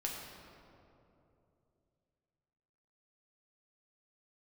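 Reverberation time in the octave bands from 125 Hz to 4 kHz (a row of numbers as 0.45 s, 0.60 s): 3.6 s, 3.2 s, 3.2 s, 2.5 s, 1.8 s, 1.4 s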